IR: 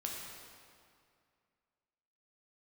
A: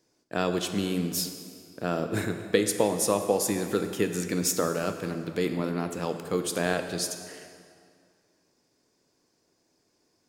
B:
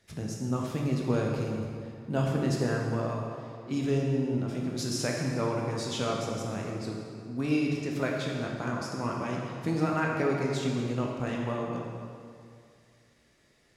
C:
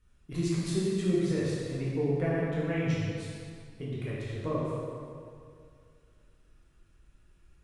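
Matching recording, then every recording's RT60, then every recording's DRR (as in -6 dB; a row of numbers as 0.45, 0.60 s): B; 2.2, 2.3, 2.3 s; 6.5, -2.0, -8.0 dB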